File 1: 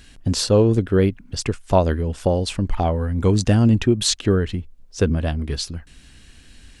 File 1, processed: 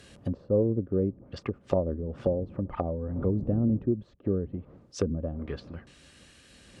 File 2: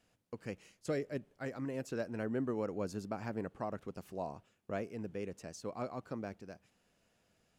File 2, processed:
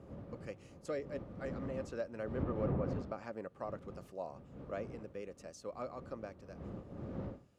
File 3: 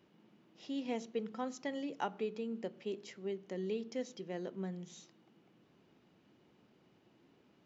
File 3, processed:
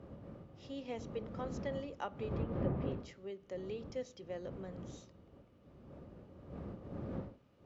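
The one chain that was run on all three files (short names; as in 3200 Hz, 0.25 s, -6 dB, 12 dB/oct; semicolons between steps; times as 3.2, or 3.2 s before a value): wind noise 160 Hz -34 dBFS; HPF 49 Hz 12 dB/oct; low shelf 180 Hz -9.5 dB; treble ducked by the level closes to 350 Hz, closed at -21 dBFS; small resonant body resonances 550/1200 Hz, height 9 dB, ringing for 40 ms; gain -4.5 dB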